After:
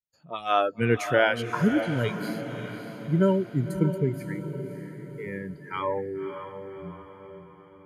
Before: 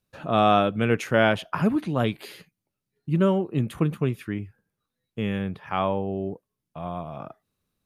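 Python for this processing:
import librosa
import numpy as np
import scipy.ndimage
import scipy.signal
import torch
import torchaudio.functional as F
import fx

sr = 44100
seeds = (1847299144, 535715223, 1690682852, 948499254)

y = fx.noise_reduce_blind(x, sr, reduce_db=27)
y = fx.echo_diffused(y, sr, ms=577, feedback_pct=50, wet_db=-9.0)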